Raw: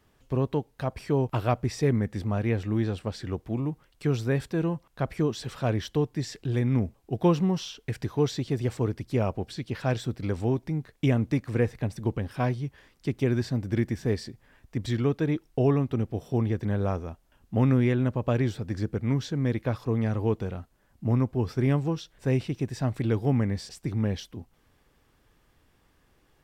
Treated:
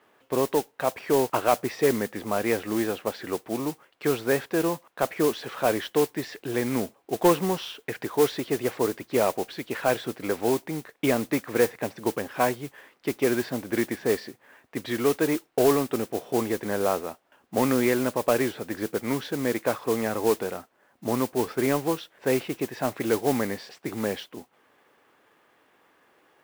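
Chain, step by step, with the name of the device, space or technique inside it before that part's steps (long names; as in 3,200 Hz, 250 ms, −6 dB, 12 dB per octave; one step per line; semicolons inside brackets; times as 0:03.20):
carbon microphone (band-pass filter 400–2,600 Hz; soft clipping −18 dBFS, distortion −22 dB; noise that follows the level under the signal 14 dB)
level +8.5 dB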